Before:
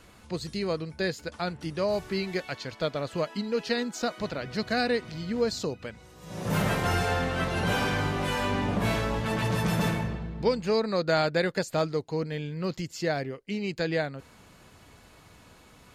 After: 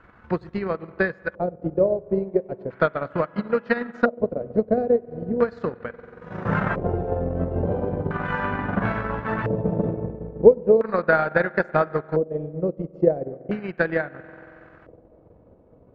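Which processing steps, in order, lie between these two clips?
spring reverb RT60 2.6 s, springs 46 ms, chirp 75 ms, DRR 8 dB
transient designer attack +11 dB, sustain −11 dB
auto-filter low-pass square 0.37 Hz 520–1,500 Hz
level −1 dB

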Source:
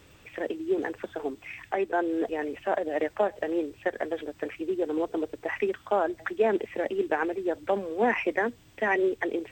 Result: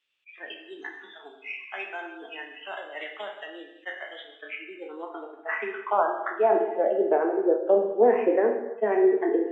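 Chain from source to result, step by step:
peak hold with a decay on every bin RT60 0.31 s
noise reduction from a noise print of the clip's start 23 dB
band-pass filter sweep 3,000 Hz → 470 Hz, 0:04.11–0:07.35
reverb whose tail is shaped and stops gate 370 ms falling, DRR 3.5 dB
level that may rise only so fast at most 590 dB per second
level +7.5 dB

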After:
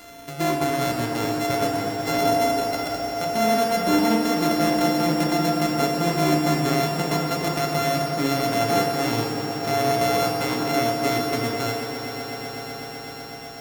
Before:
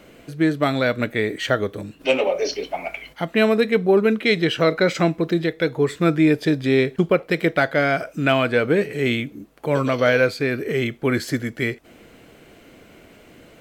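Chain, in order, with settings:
samples sorted by size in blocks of 64 samples
brickwall limiter −13.5 dBFS, peak gain reduction 8 dB
on a send: echo that builds up and dies away 125 ms, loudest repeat 5, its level −13 dB
on the sum: feedback delay network reverb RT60 2.2 s, low-frequency decay 0.7×, high-frequency decay 0.4×, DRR 0 dB
one half of a high-frequency compander encoder only
level −3 dB

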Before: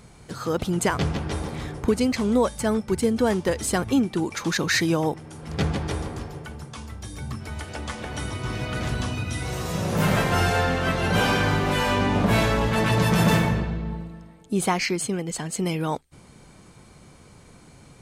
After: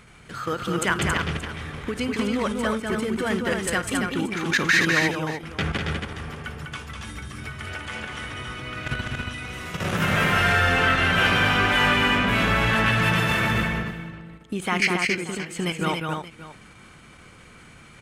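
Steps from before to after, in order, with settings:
output level in coarse steps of 13 dB
flat-topped bell 2,000 Hz +9.5 dB
on a send: multi-tap delay 54/199/276/578 ms −18/−4.5/−5/−16.5 dB
on the sum: every ending faded ahead of time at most 230 dB per second

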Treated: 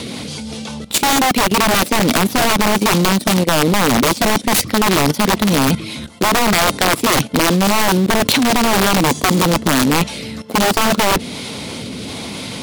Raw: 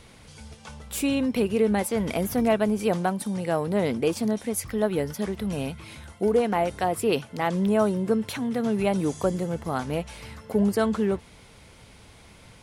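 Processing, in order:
stylus tracing distortion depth 0.071 ms
rotating-speaker cabinet horn 5 Hz, later 1.1 Hz, at 0:09.53
in parallel at −6 dB: bit reduction 5 bits
on the sum: graphic EQ with 15 bands 250 Hz +8 dB, 1,600 Hz −5 dB, 4,000 Hz +6 dB
reversed playback
downward compressor 4 to 1, threshold −33 dBFS, peak gain reduction 18 dB
reversed playback
high-pass filter 140 Hz 12 dB per octave
wrap-around overflow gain 28.5 dB
output level in coarse steps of 14 dB
boost into a limiter +29 dB
MP3 128 kbit/s 48,000 Hz

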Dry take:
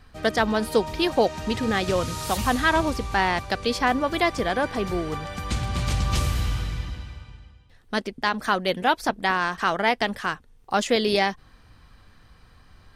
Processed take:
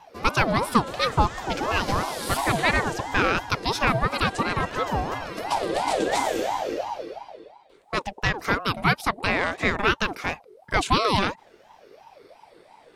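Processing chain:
rippled gain that drifts along the octave scale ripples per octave 0.74, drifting −0.59 Hz, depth 7 dB
ring modulator whose carrier an LFO sweeps 650 Hz, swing 40%, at 2.9 Hz
level +2 dB

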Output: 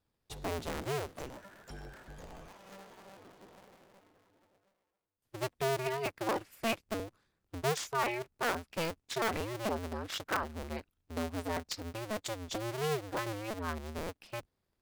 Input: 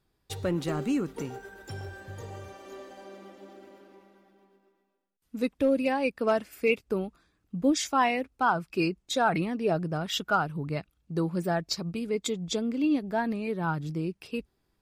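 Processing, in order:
sub-harmonics by changed cycles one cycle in 2, inverted
level −8 dB

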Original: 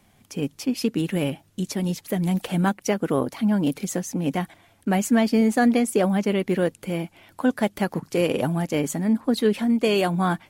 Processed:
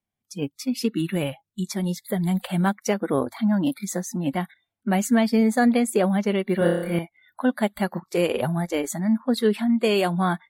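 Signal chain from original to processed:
noise reduction from a noise print of the clip's start 29 dB
0:06.58–0:06.99: flutter between parallel walls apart 5 metres, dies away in 0.82 s

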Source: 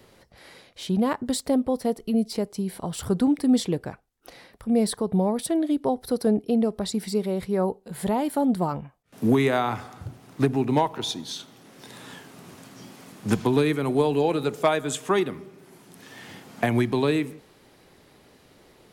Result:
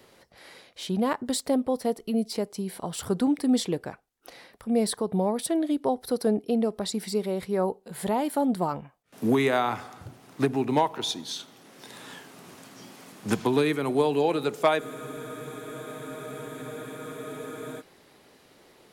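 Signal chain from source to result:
low-shelf EQ 160 Hz −10.5 dB
frozen spectrum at 0:14.81, 2.98 s

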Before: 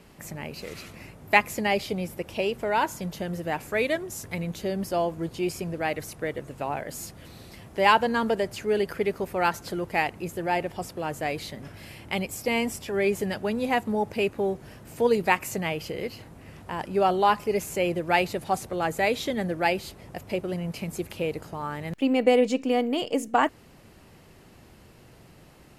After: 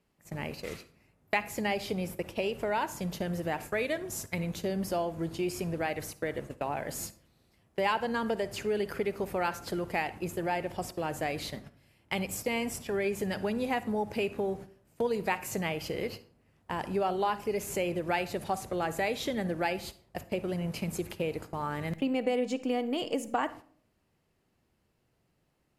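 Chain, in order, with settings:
noise gate −38 dBFS, range −22 dB
downward compressor 2.5 to 1, threshold −30 dBFS, peak gain reduction 11.5 dB
on a send: convolution reverb RT60 0.55 s, pre-delay 45 ms, DRR 15 dB

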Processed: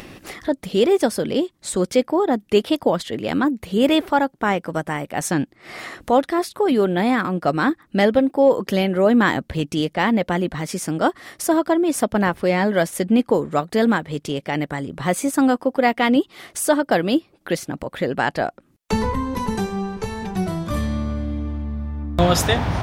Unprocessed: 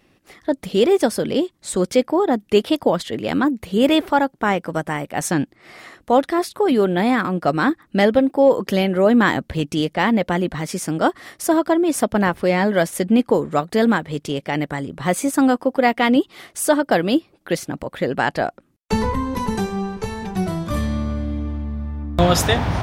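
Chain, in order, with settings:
upward compression, threshold −23 dBFS
level −1 dB

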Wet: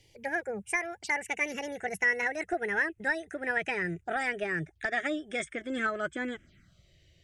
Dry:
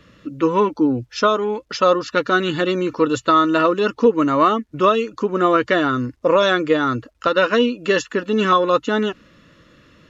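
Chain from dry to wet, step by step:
gliding playback speed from 171% → 108%
low-shelf EQ 350 Hz +7.5 dB
phaser swept by the level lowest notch 190 Hz, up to 4,400 Hz, full sweep at −18.5 dBFS
graphic EQ with 10 bands 250 Hz −8 dB, 500 Hz −8 dB, 1,000 Hz −11 dB, 2,000 Hz +4 dB
level −9 dB

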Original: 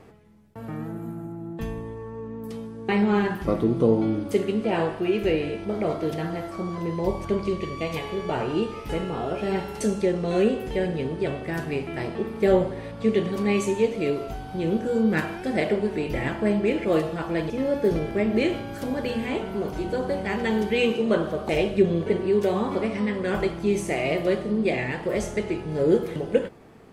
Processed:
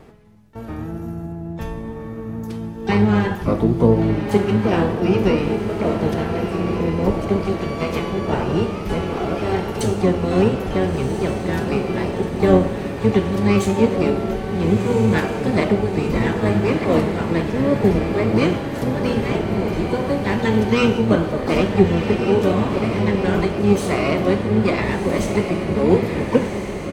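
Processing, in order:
feedback delay with all-pass diffusion 1,393 ms, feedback 53%, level −6 dB
pitch-shifted copies added −12 semitones −3 dB, +12 semitones −14 dB
level +3 dB

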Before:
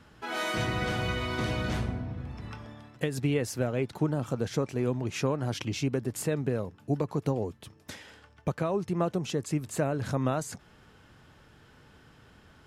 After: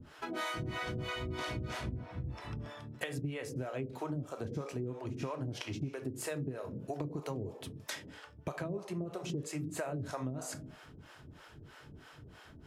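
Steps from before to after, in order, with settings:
on a send at −6 dB: high-pass filter 120 Hz 12 dB per octave + convolution reverb RT60 0.60 s, pre-delay 3 ms
on the sum: two-band tremolo in antiphase 3.1 Hz, depth 100%, crossover 460 Hz
downward compressor 6 to 1, threshold −41 dBFS, peak gain reduction 16.5 dB
level +5.5 dB

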